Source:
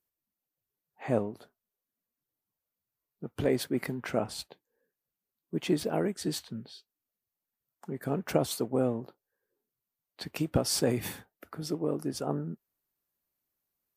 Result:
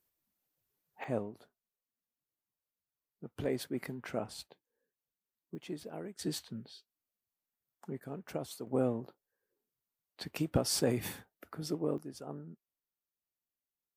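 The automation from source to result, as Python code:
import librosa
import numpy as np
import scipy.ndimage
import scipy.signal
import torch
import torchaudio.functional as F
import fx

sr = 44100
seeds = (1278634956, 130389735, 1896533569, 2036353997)

y = fx.gain(x, sr, db=fx.steps((0.0, 4.5), (1.04, -7.0), (5.55, -14.0), (6.19, -4.0), (8.0, -12.0), (8.67, -3.0), (11.98, -12.0)))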